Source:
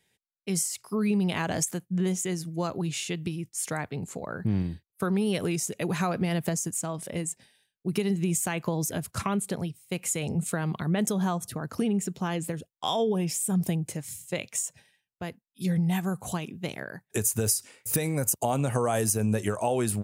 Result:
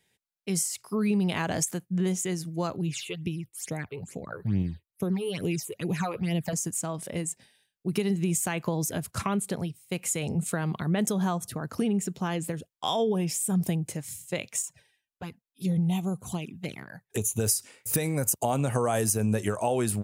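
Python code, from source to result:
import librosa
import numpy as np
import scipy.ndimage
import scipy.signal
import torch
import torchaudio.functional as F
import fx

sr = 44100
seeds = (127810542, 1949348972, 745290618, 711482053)

y = fx.phaser_stages(x, sr, stages=8, low_hz=200.0, high_hz=1500.0, hz=2.3, feedback_pct=25, at=(2.76, 6.53))
y = fx.env_flanger(y, sr, rest_ms=3.7, full_db=-26.5, at=(14.62, 17.4))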